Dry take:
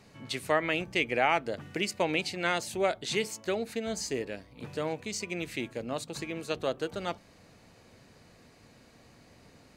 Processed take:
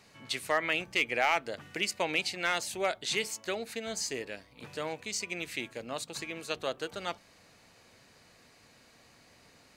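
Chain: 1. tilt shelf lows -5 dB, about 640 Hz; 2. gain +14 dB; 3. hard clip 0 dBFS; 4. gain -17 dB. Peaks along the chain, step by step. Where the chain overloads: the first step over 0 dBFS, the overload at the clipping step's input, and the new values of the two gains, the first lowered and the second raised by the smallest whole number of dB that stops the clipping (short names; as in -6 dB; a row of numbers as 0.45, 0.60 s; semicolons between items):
-9.5, +4.5, 0.0, -17.0 dBFS; step 2, 4.5 dB; step 2 +9 dB, step 4 -12 dB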